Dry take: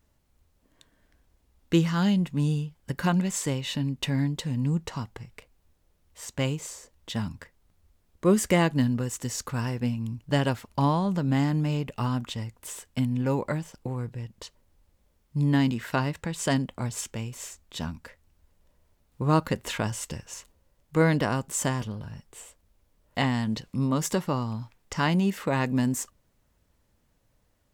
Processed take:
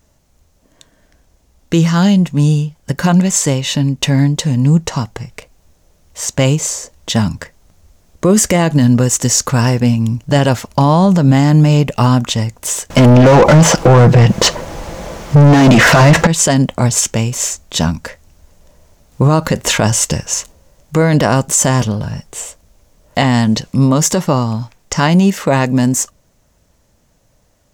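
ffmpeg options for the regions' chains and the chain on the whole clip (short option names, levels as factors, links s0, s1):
-filter_complex "[0:a]asettb=1/sr,asplit=3[s0][s1][s2];[s0]atrim=end=12.904[s3];[s1]atrim=start=12.9:end=16.27,asetpts=PTS-STARTPTS,afade=t=in:d=0.004:c=qsin,afade=t=out:st=3.366:d=0.004:c=qsin,lowshelf=f=120:g=9.5,aecho=1:1:6:0.31,atrim=end_sample=148617,asplit=2[s4][s5];[s5]highpass=f=720:p=1,volume=100,asoftclip=type=tanh:threshold=0.398[s6];[s4][s6]amix=inputs=2:normalize=0,lowpass=f=1200:p=1,volume=0.501[s7];[s2]atrim=start=16.266[s8];[s3][s7]acrossfade=d=0.004:c1=hsin:c2=qsin[s9];[s9][s8]acrossfade=d=0.004:c1=qsin:c2=hsin,equalizer=f=160:t=o:w=0.67:g=3,equalizer=f=630:t=o:w=0.67:g=5,equalizer=f=6300:t=o:w=0.67:g=8,dynaudnorm=f=500:g=21:m=3.76,alimiter=level_in=3.98:limit=0.891:release=50:level=0:latency=1,volume=0.891"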